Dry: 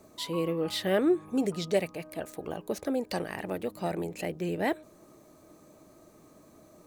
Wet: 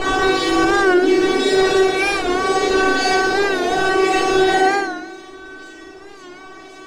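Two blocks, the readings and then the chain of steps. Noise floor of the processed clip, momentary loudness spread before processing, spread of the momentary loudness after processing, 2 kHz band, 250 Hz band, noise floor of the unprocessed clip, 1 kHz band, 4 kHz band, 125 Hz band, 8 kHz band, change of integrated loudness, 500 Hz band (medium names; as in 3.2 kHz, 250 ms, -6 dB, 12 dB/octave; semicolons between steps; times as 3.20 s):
-39 dBFS, 12 LU, 10 LU, +23.0 dB, +12.0 dB, -57 dBFS, +21.5 dB, +17.0 dB, +2.0 dB, +16.0 dB, +15.5 dB, +14.5 dB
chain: reverse spectral sustain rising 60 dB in 2.54 s; high-pass 190 Hz 12 dB/octave; peaking EQ 15 kHz +11.5 dB 1.5 oct; band-stop 1.2 kHz, Q 7.1; compression, threshold -25 dBFS, peak gain reduction 8 dB; decimation with a swept rate 12×, swing 160% 1.9 Hz; distance through air 110 m; feedback comb 380 Hz, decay 0.29 s, harmonics all, mix 100%; on a send: flutter echo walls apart 9.8 m, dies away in 0.7 s; on the sum: FDN reverb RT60 1 s, low-frequency decay 1.35×, high-frequency decay 0.8×, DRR 0.5 dB; loudness maximiser +33 dB; warped record 45 rpm, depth 100 cents; trim -5 dB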